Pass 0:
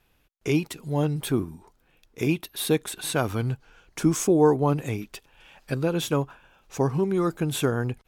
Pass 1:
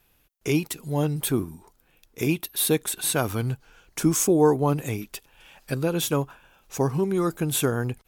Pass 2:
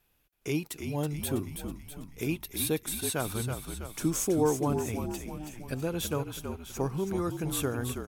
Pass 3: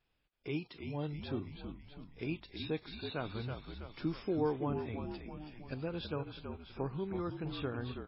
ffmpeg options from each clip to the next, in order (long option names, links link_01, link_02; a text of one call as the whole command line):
ffmpeg -i in.wav -af "highshelf=frequency=7900:gain=12" out.wav
ffmpeg -i in.wav -filter_complex "[0:a]asplit=8[link_01][link_02][link_03][link_04][link_05][link_06][link_07][link_08];[link_02]adelay=325,afreqshift=-50,volume=-7dB[link_09];[link_03]adelay=650,afreqshift=-100,volume=-12dB[link_10];[link_04]adelay=975,afreqshift=-150,volume=-17.1dB[link_11];[link_05]adelay=1300,afreqshift=-200,volume=-22.1dB[link_12];[link_06]adelay=1625,afreqshift=-250,volume=-27.1dB[link_13];[link_07]adelay=1950,afreqshift=-300,volume=-32.2dB[link_14];[link_08]adelay=2275,afreqshift=-350,volume=-37.2dB[link_15];[link_01][link_09][link_10][link_11][link_12][link_13][link_14][link_15]amix=inputs=8:normalize=0,volume=-7.5dB" out.wav
ffmpeg -i in.wav -af "volume=-6.5dB" -ar 12000 -c:a libmp3lame -b:a 16k out.mp3